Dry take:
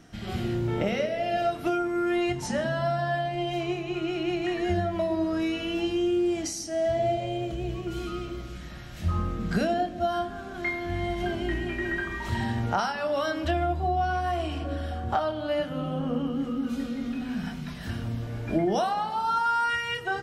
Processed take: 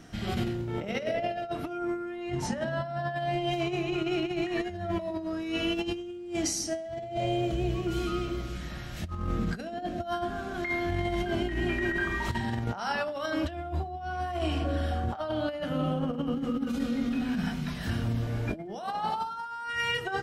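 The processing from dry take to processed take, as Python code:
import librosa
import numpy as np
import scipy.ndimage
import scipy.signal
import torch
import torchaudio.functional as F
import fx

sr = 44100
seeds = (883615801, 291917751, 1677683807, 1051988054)

y = fx.high_shelf(x, sr, hz=3800.0, db=-7.0, at=(1.14, 3.16))
y = fx.over_compress(y, sr, threshold_db=-30.0, ratio=-0.5)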